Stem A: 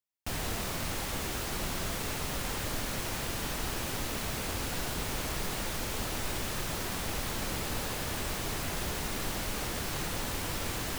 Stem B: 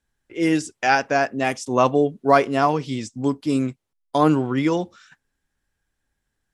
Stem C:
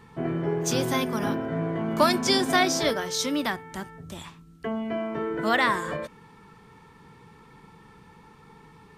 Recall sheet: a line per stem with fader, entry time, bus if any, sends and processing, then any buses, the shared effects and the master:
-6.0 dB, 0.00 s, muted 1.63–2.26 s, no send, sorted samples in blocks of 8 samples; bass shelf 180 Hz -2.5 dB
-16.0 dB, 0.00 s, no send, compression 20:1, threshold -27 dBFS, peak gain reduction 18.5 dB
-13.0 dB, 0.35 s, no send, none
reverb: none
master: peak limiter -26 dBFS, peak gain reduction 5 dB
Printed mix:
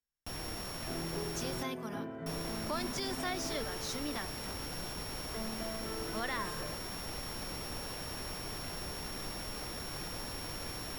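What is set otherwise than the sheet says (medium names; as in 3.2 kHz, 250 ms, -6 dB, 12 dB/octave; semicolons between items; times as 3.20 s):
stem B -16.0 dB -> -24.0 dB; stem C: entry 0.35 s -> 0.70 s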